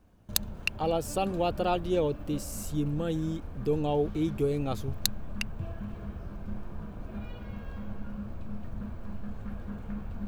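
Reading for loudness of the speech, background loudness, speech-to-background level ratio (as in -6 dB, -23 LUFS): -31.0 LUFS, -41.5 LUFS, 10.5 dB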